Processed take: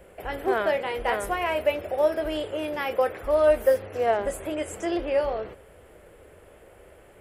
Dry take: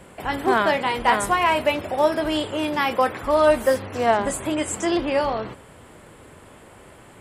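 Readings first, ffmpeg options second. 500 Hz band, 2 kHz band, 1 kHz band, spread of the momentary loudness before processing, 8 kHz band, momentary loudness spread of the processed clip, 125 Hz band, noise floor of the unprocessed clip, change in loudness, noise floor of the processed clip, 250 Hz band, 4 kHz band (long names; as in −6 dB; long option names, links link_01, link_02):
−1.5 dB, −7.0 dB, −8.5 dB, 7 LU, −10.5 dB, 9 LU, −7.0 dB, −48 dBFS, −4.0 dB, −52 dBFS, −8.0 dB, −9.0 dB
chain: -af "equalizer=frequency=125:width_type=o:width=1:gain=-11,equalizer=frequency=250:width_type=o:width=1:gain=-12,equalizer=frequency=500:width_type=o:width=1:gain=4,equalizer=frequency=1000:width_type=o:width=1:gain=-12,equalizer=frequency=2000:width_type=o:width=1:gain=-3,equalizer=frequency=4000:width_type=o:width=1:gain=-10,equalizer=frequency=8000:width_type=o:width=1:gain=-12,volume=1.5dB"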